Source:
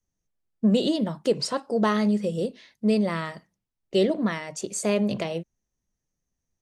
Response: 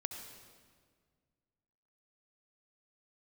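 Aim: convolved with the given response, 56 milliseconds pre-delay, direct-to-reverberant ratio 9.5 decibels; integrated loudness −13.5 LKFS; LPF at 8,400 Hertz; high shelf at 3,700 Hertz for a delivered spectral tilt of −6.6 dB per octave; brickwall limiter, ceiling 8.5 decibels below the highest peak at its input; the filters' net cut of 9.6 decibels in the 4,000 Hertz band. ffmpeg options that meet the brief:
-filter_complex "[0:a]lowpass=8400,highshelf=frequency=3700:gain=-7.5,equalizer=frequency=4000:width_type=o:gain=-8,alimiter=limit=-20dB:level=0:latency=1,asplit=2[link_01][link_02];[1:a]atrim=start_sample=2205,adelay=56[link_03];[link_02][link_03]afir=irnorm=-1:irlink=0,volume=-9dB[link_04];[link_01][link_04]amix=inputs=2:normalize=0,volume=16dB"

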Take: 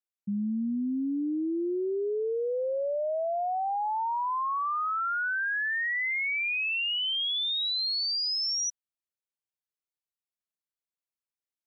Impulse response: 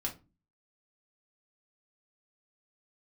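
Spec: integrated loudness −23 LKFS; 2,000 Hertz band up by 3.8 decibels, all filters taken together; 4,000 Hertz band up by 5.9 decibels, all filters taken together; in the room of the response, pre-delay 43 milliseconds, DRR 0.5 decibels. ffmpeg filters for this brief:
-filter_complex "[0:a]equalizer=frequency=2000:width_type=o:gain=3,equalizer=frequency=4000:width_type=o:gain=6.5,asplit=2[link_01][link_02];[1:a]atrim=start_sample=2205,adelay=43[link_03];[link_02][link_03]afir=irnorm=-1:irlink=0,volume=-2dB[link_04];[link_01][link_04]amix=inputs=2:normalize=0,volume=-1.5dB"

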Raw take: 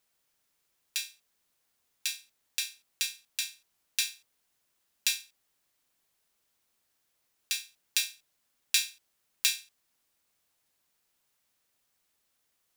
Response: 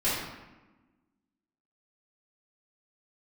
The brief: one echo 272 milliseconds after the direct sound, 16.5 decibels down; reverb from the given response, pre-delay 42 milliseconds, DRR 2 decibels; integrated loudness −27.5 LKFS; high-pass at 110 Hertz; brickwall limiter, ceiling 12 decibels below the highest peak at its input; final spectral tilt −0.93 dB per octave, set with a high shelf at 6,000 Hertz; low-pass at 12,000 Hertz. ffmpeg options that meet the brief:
-filter_complex "[0:a]highpass=110,lowpass=12000,highshelf=frequency=6000:gain=-8.5,alimiter=limit=-22dB:level=0:latency=1,aecho=1:1:272:0.15,asplit=2[link_01][link_02];[1:a]atrim=start_sample=2205,adelay=42[link_03];[link_02][link_03]afir=irnorm=-1:irlink=0,volume=-13.5dB[link_04];[link_01][link_04]amix=inputs=2:normalize=0,volume=12dB"

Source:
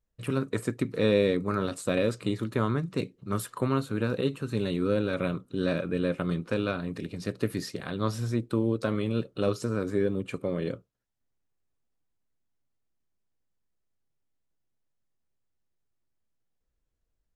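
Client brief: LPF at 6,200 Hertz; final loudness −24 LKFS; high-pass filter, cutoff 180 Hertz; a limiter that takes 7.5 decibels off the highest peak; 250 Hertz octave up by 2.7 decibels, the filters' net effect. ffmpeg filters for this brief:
ffmpeg -i in.wav -af "highpass=180,lowpass=6200,equalizer=frequency=250:width_type=o:gain=5,volume=6dB,alimiter=limit=-11.5dB:level=0:latency=1" out.wav

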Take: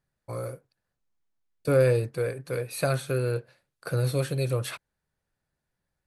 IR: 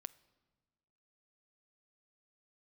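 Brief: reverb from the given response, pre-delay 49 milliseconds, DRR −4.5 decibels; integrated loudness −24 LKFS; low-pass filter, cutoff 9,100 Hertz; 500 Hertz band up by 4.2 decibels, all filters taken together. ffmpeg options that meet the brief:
-filter_complex "[0:a]lowpass=9100,equalizer=frequency=500:width_type=o:gain=4.5,asplit=2[link_01][link_02];[1:a]atrim=start_sample=2205,adelay=49[link_03];[link_02][link_03]afir=irnorm=-1:irlink=0,volume=9.5dB[link_04];[link_01][link_04]amix=inputs=2:normalize=0,volume=-4.5dB"

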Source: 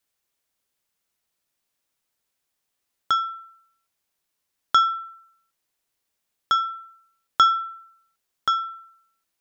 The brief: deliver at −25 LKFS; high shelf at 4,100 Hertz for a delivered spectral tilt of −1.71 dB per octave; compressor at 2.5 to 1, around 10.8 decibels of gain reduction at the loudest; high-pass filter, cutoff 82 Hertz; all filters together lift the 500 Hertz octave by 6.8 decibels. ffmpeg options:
ffmpeg -i in.wav -af "highpass=82,equalizer=frequency=500:width_type=o:gain=8.5,highshelf=frequency=4100:gain=-3,acompressor=threshold=-29dB:ratio=2.5,volume=7dB" out.wav

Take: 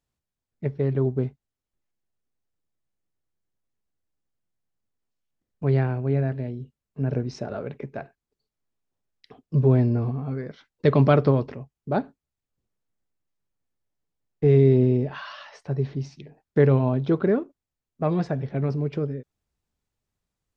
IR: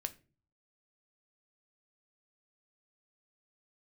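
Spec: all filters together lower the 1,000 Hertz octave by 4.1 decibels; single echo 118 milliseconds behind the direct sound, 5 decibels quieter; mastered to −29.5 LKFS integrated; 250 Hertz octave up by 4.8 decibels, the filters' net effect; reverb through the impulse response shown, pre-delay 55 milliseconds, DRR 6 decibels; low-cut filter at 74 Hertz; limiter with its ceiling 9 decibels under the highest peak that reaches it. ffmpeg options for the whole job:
-filter_complex "[0:a]highpass=74,equalizer=frequency=250:width_type=o:gain=6.5,equalizer=frequency=1000:width_type=o:gain=-6.5,alimiter=limit=-13.5dB:level=0:latency=1,aecho=1:1:118:0.562,asplit=2[link_01][link_02];[1:a]atrim=start_sample=2205,adelay=55[link_03];[link_02][link_03]afir=irnorm=-1:irlink=0,volume=-5dB[link_04];[link_01][link_04]amix=inputs=2:normalize=0,volume=-6.5dB"

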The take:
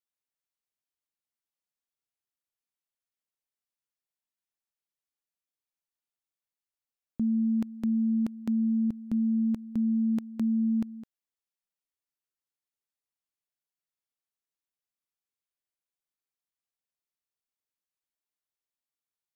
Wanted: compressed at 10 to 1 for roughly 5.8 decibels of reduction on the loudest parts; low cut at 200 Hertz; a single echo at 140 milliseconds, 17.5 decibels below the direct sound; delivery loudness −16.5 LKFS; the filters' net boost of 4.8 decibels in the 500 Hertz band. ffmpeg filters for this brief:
ffmpeg -i in.wav -af "highpass=200,equalizer=frequency=500:width_type=o:gain=6.5,acompressor=threshold=-31dB:ratio=10,aecho=1:1:140:0.133,volume=19dB" out.wav

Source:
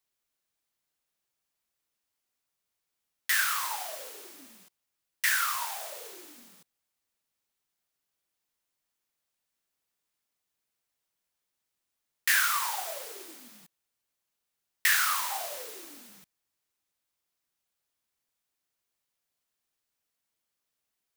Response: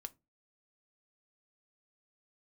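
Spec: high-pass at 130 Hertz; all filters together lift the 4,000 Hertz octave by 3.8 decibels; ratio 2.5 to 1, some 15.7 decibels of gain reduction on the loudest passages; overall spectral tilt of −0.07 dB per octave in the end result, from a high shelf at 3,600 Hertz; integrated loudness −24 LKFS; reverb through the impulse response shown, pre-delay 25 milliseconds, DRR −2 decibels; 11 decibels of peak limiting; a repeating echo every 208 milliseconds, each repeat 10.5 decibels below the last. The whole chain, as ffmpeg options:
-filter_complex "[0:a]highpass=130,highshelf=frequency=3600:gain=-4,equalizer=frequency=4000:width_type=o:gain=7.5,acompressor=threshold=-45dB:ratio=2.5,alimiter=level_in=8.5dB:limit=-24dB:level=0:latency=1,volume=-8.5dB,aecho=1:1:208|416|624:0.299|0.0896|0.0269,asplit=2[link_01][link_02];[1:a]atrim=start_sample=2205,adelay=25[link_03];[link_02][link_03]afir=irnorm=-1:irlink=0,volume=6.5dB[link_04];[link_01][link_04]amix=inputs=2:normalize=0,volume=16dB"

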